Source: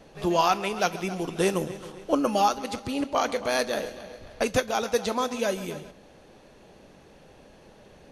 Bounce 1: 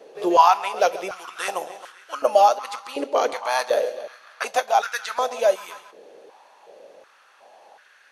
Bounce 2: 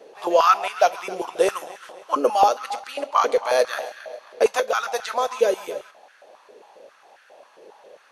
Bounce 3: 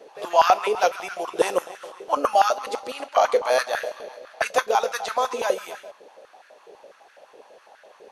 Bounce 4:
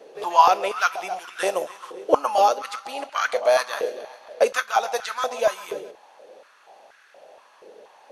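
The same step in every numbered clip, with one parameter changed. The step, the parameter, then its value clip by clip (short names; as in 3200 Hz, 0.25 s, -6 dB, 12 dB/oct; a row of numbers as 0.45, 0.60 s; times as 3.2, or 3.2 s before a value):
stepped high-pass, rate: 2.7, 7.4, 12, 4.2 Hz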